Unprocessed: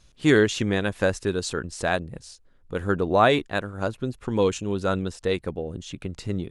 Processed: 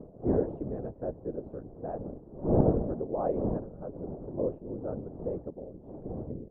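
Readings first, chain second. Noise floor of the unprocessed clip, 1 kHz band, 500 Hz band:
−56 dBFS, −13.0 dB, −7.5 dB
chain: wind on the microphone 380 Hz −22 dBFS
random phases in short frames
transistor ladder low-pass 770 Hz, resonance 30%
level −6 dB

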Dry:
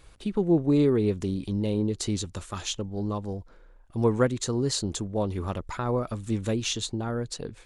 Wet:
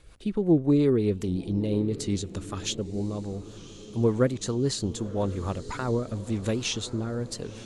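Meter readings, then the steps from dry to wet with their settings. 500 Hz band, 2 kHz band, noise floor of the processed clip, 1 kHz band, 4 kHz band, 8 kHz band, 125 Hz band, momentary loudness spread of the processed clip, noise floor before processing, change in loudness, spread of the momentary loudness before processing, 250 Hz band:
0.0 dB, −0.5 dB, −45 dBFS, −3.0 dB, −1.0 dB, −2.0 dB, +0.5 dB, 12 LU, −53 dBFS, 0.0 dB, 11 LU, +0.5 dB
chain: rotating-speaker cabinet horn 5.5 Hz, later 1 Hz, at 0:05.11
feedback delay with all-pass diffusion 1,049 ms, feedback 53%, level −15.5 dB
wow of a warped record 78 rpm, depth 100 cents
level +1.5 dB

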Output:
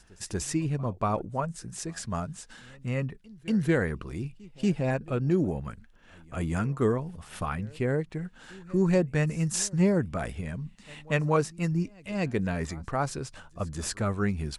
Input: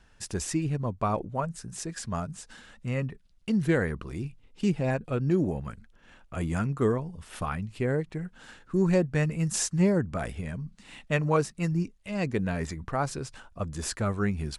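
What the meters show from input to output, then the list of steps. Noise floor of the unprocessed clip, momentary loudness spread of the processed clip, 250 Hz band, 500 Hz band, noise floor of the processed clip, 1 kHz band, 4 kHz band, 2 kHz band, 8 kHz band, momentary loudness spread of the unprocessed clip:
−59 dBFS, 14 LU, 0.0 dB, 0.0 dB, −55 dBFS, 0.0 dB, 0.0 dB, 0.0 dB, 0.0 dB, 14 LU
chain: echo ahead of the sound 236 ms −23.5 dB

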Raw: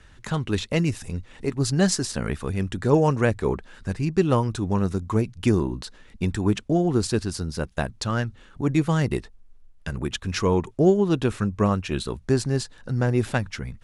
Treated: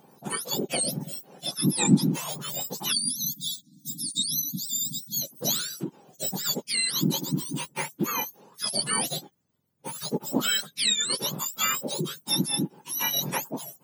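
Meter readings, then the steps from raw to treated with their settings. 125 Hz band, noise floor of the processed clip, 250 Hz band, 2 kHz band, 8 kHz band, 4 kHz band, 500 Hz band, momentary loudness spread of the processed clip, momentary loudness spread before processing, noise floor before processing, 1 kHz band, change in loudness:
−10.0 dB, −66 dBFS, −6.5 dB, −2.0 dB, +8.5 dB, +8.5 dB, −12.5 dB, 10 LU, 10 LU, −51 dBFS, −5.0 dB, −2.5 dB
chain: frequency axis turned over on the octave scale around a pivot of 1,200 Hz
time-frequency box erased 0:02.92–0:05.22, 310–3,300 Hz

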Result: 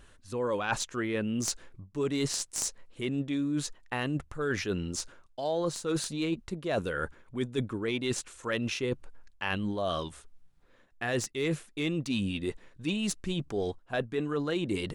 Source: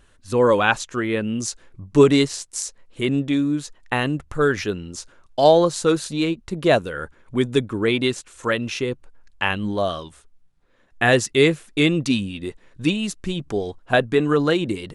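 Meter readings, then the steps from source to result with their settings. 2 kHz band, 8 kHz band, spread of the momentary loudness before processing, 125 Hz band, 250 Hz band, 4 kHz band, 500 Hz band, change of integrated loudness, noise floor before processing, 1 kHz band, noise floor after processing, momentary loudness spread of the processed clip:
−12.0 dB, −4.0 dB, 13 LU, −9.5 dB, −10.0 dB, −9.5 dB, −13.0 dB, −11.5 dB, −57 dBFS, −13.0 dB, −60 dBFS, 6 LU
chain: stylus tracing distortion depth 0.023 ms
reversed playback
downward compressor 8 to 1, threshold −28 dBFS, peak gain reduction 19.5 dB
reversed playback

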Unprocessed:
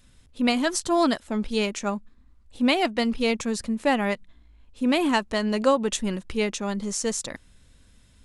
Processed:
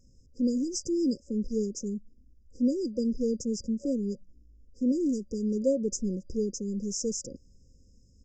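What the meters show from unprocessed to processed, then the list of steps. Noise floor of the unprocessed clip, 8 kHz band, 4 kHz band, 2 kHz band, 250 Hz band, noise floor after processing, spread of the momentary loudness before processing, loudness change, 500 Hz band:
−56 dBFS, −4.5 dB, −14.5 dB, below −40 dB, −3.0 dB, −60 dBFS, 8 LU, −5.5 dB, −6.0 dB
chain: brick-wall band-stop 570–4,800 Hz
dynamic equaliser 1,000 Hz, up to −5 dB, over −41 dBFS, Q 0.82
downsampling to 16,000 Hz
level −2.5 dB

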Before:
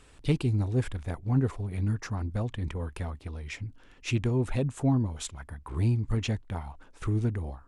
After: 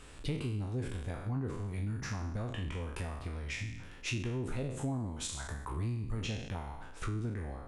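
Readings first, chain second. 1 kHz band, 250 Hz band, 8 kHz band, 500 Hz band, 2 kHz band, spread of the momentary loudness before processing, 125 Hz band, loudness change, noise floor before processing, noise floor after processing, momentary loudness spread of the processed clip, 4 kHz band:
−3.5 dB, −8.5 dB, −0.5 dB, −7.0 dB, −1.5 dB, 12 LU, −8.0 dB, −7.5 dB, −55 dBFS, −48 dBFS, 5 LU, −1.5 dB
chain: peak hold with a decay on every bin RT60 0.68 s
downward compressor 3 to 1, threshold −39 dBFS, peak gain reduction 14.5 dB
level +2 dB

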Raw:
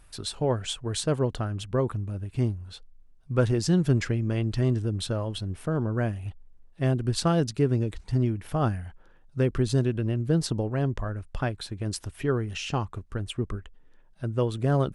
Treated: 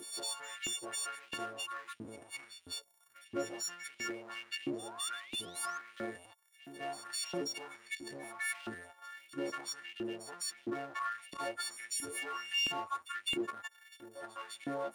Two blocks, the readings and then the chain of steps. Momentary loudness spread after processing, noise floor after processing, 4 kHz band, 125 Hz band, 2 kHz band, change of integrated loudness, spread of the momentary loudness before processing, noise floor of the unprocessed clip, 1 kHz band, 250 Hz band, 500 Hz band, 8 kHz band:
11 LU, −66 dBFS, −2.0 dB, −34.0 dB, −0.5 dB, −11.5 dB, 10 LU, −55 dBFS, −5.5 dB, −16.0 dB, −15.0 dB, −1.5 dB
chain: every partial snapped to a pitch grid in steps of 4 semitones
noise reduction from a noise print of the clip's start 13 dB
high-shelf EQ 9,400 Hz +5 dB
transient designer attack −9 dB, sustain +9 dB
downward compressor 2.5 to 1, threshold −42 dBFS, peak gain reduction 17 dB
brickwall limiter −34 dBFS, peak gain reduction 10 dB
sound drawn into the spectrogram rise, 0:04.62–0:05.78, 480–6,600 Hz −60 dBFS
power curve on the samples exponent 0.7
echo ahead of the sound 206 ms −13 dB
auto-filter high-pass saw up 1.5 Hz 280–3,300 Hz
level +2.5 dB

